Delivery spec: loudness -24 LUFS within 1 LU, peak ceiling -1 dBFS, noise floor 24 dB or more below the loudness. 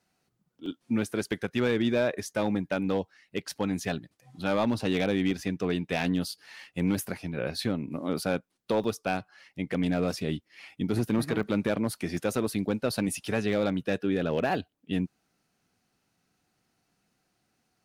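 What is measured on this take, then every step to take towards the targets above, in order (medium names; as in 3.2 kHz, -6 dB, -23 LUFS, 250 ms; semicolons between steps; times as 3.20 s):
clipped samples 0.3%; clipping level -17.5 dBFS; dropouts 8; longest dropout 1.4 ms; loudness -30.0 LUFS; peak level -17.5 dBFS; loudness target -24.0 LUFS
-> clip repair -17.5 dBFS; interpolate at 0.66/5.31/6.08/6.99/8.22/8.84/11.43/12.17 s, 1.4 ms; trim +6 dB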